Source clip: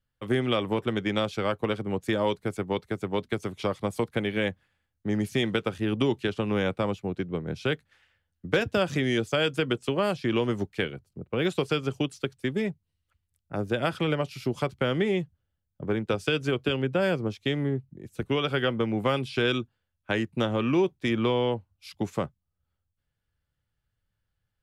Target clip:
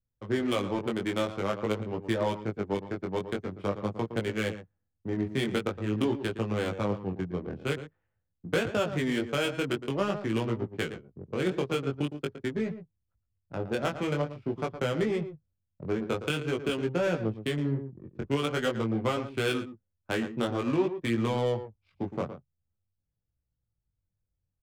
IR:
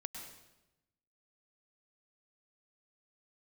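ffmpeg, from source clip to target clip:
-af "aecho=1:1:114:0.299,adynamicsmooth=sensitivity=3.5:basefreq=660,flanger=delay=17.5:depth=4.6:speed=0.47"

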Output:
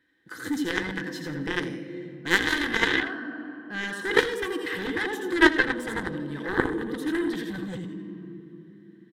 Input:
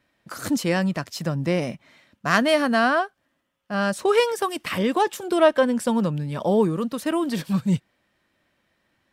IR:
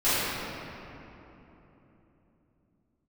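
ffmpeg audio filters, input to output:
-filter_complex "[0:a]asplit=2[a][b];[1:a]atrim=start_sample=2205,asetrate=48510,aresample=44100[c];[b][c]afir=irnorm=-1:irlink=0,volume=-25dB[d];[a][d]amix=inputs=2:normalize=0,acontrast=37,aecho=1:1:84|168|252|336:0.531|0.149|0.0416|0.0117,aeval=exprs='0.891*(cos(1*acos(clip(val(0)/0.891,-1,1)))-cos(1*PI/2))+0.398*(cos(3*acos(clip(val(0)/0.891,-1,1)))-cos(3*PI/2))':c=same,superequalizer=6b=3.55:7b=2:8b=0.398:11b=3.98:13b=2.24,volume=-6dB"

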